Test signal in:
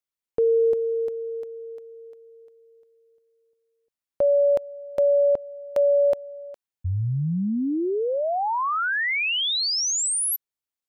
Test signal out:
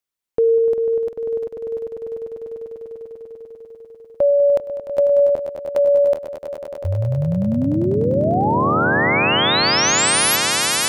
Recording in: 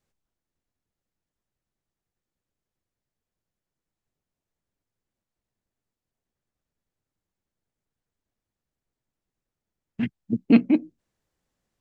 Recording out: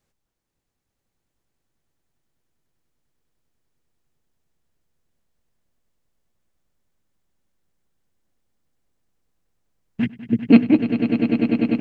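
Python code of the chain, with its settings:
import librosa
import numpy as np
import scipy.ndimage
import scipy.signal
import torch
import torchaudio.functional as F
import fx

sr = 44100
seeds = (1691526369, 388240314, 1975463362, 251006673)

y = fx.echo_swell(x, sr, ms=99, loudest=8, wet_db=-10.5)
y = y * 10.0 ** (4.5 / 20.0)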